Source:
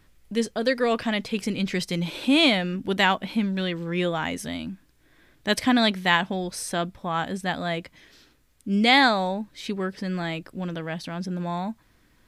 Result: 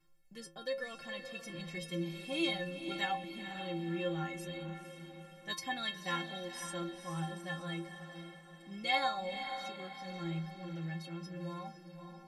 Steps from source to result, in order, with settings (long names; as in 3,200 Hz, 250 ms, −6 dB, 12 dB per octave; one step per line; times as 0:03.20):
stiff-string resonator 160 Hz, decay 0.5 s, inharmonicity 0.03
feedback delay with all-pass diffusion 491 ms, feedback 47%, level −8.5 dB